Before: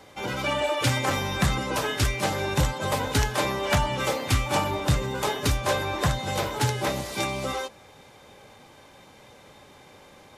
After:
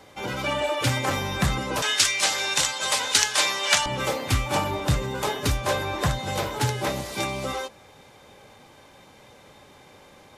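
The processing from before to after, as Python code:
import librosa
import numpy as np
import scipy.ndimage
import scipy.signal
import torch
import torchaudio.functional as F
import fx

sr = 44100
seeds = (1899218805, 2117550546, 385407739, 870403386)

y = fx.weighting(x, sr, curve='ITU-R 468', at=(1.82, 3.86))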